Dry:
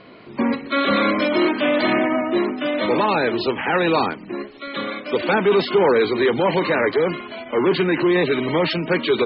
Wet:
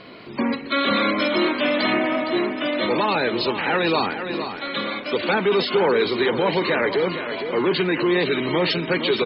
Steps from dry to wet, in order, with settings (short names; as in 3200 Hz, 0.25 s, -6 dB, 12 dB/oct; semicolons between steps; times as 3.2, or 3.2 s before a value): feedback echo 0.462 s, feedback 34%, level -10.5 dB; in parallel at +1 dB: compressor, threshold -29 dBFS, peak gain reduction 15.5 dB; on the sum: high shelf 4400 Hz +12 dB; gain -5 dB